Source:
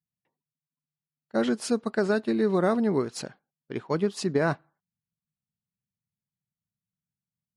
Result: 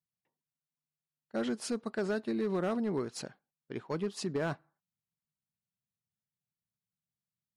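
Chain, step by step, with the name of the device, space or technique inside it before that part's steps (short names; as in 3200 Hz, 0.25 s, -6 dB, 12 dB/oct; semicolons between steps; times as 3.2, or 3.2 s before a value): clipper into limiter (hard clip -18.5 dBFS, distortion -18 dB; limiter -21 dBFS, peak gain reduction 2.5 dB); gain -5.5 dB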